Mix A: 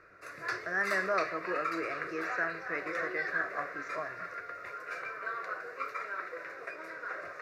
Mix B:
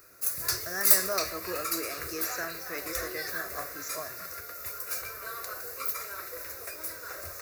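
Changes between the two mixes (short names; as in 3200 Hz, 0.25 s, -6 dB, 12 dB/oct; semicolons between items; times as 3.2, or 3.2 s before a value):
background: remove HPF 160 Hz 24 dB/oct; master: remove synth low-pass 1900 Hz, resonance Q 1.6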